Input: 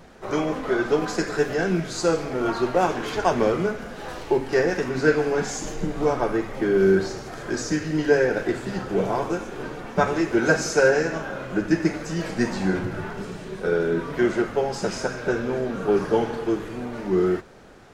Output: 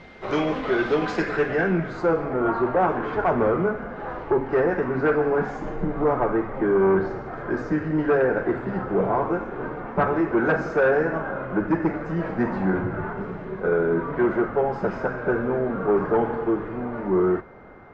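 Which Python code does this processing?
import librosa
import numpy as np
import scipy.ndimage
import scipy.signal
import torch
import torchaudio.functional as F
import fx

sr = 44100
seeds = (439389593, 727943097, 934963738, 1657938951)

y = fx.cheby_harmonics(x, sr, harmonics=(5,), levels_db=(-7,), full_scale_db=-5.0)
y = y + 10.0 ** (-43.0 / 20.0) * np.sin(2.0 * np.pi * 2100.0 * np.arange(len(y)) / sr)
y = fx.filter_sweep_lowpass(y, sr, from_hz=3500.0, to_hz=1300.0, start_s=0.9, end_s=2.11, q=1.3)
y = y * librosa.db_to_amplitude(-8.5)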